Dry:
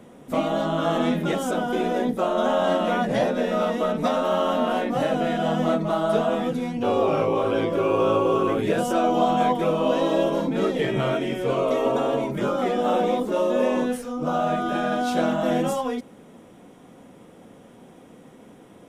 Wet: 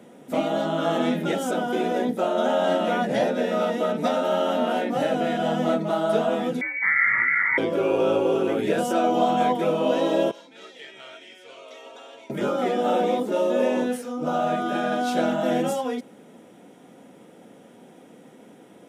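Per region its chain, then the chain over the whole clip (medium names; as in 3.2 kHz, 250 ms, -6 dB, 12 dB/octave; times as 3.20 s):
6.61–7.58 s: high-pass 210 Hz 24 dB/octave + frequency inversion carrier 2.5 kHz + dynamic bell 960 Hz, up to +5 dB, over -39 dBFS, Q 1.7
10.31–12.30 s: low-pass 4.7 kHz + differentiator
whole clip: high-pass 170 Hz 12 dB/octave; band-stop 1.1 kHz, Q 6.1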